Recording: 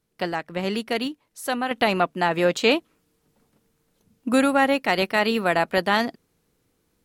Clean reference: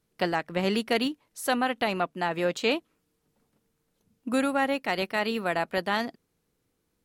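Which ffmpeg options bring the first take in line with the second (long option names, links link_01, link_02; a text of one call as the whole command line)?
ffmpeg -i in.wav -af "asetnsamples=nb_out_samples=441:pad=0,asendcmd='1.71 volume volume -6.5dB',volume=0dB" out.wav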